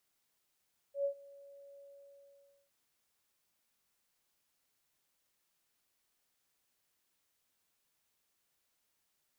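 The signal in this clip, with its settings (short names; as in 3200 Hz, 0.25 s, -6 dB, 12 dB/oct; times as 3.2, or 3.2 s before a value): ADSR sine 561 Hz, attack 0.107 s, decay 90 ms, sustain -23.5 dB, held 0.86 s, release 0.908 s -29 dBFS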